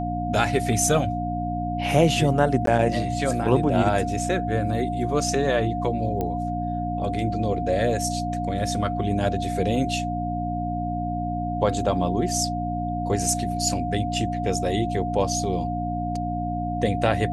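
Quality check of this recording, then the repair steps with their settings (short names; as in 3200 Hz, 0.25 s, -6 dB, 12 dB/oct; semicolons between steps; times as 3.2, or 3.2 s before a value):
hum 60 Hz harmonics 5 -29 dBFS
tone 710 Hz -28 dBFS
2.66–2.67 gap 13 ms
6.21 pop -15 dBFS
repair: de-click; de-hum 60 Hz, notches 5; notch 710 Hz, Q 30; interpolate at 2.66, 13 ms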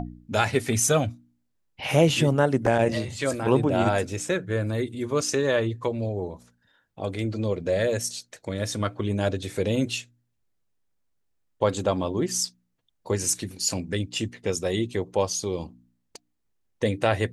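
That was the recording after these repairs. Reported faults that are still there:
none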